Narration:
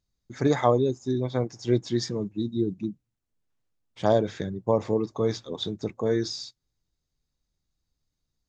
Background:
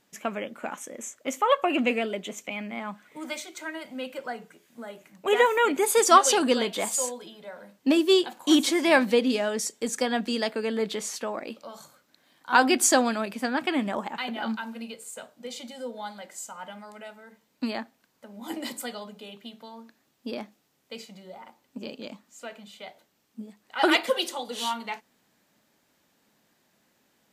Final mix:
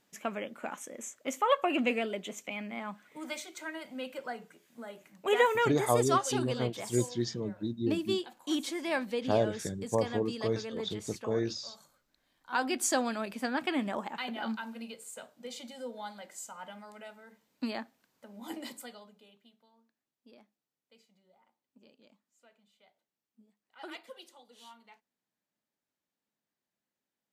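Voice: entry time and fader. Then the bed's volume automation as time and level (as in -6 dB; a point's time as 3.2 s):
5.25 s, -6.0 dB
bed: 5.55 s -4.5 dB
5.94 s -12 dB
12.51 s -12 dB
13.34 s -5 dB
18.44 s -5 dB
19.72 s -23.5 dB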